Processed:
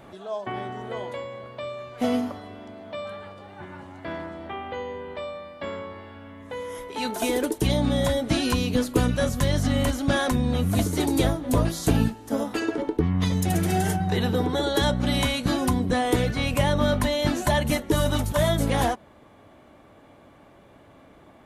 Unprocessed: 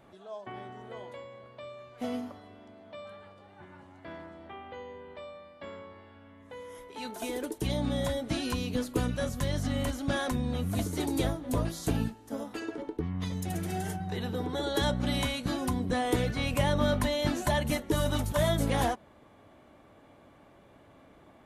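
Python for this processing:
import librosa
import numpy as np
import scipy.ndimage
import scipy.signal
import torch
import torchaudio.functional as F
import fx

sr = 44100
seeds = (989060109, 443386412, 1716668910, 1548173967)

y = fx.rider(x, sr, range_db=3, speed_s=0.5)
y = y * librosa.db_to_amplitude(7.5)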